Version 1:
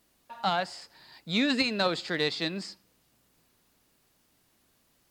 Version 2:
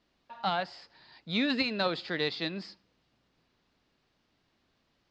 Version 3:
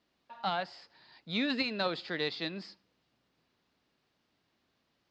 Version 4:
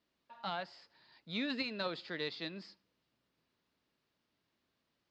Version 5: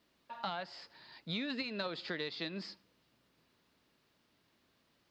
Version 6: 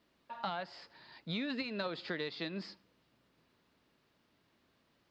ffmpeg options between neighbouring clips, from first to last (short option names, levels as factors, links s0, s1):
-af "lowpass=f=4900:w=0.5412,lowpass=f=4900:w=1.3066,volume=0.75"
-af "highpass=f=99:p=1,volume=0.75"
-af "bandreject=f=760:w=12,volume=0.531"
-af "acompressor=threshold=0.00631:ratio=6,volume=2.66"
-af "highshelf=f=3700:g=-6.5,volume=1.19"